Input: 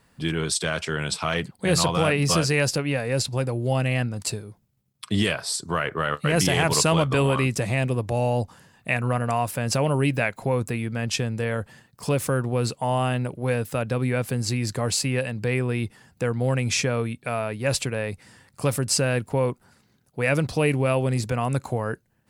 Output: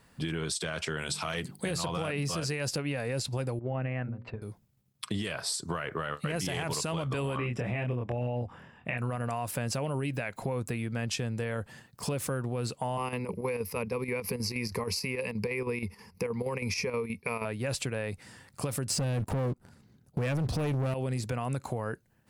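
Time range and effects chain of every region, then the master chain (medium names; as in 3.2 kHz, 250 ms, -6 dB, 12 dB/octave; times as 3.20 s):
0.97–1.71 s: high-pass 43 Hz + treble shelf 5.6 kHz +9.5 dB + hum notches 50/100/150/200/250/300/350/400 Hz
3.59–4.42 s: gate -28 dBFS, range -11 dB + low-pass 2.2 kHz 24 dB/octave + hum notches 60/120/180/240/300/360/420/480/540/600 Hz
7.37–8.98 s: Savitzky-Golay filter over 25 samples + doubling 25 ms -2 dB
12.97–17.45 s: rippled EQ curve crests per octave 0.85, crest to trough 15 dB + square tremolo 6.3 Hz, depth 60%, duty 75%
18.90–20.94 s: bass shelf 450 Hz +12 dB + waveshaping leveller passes 3
whole clip: peak limiter -17 dBFS; compression 4:1, threshold -30 dBFS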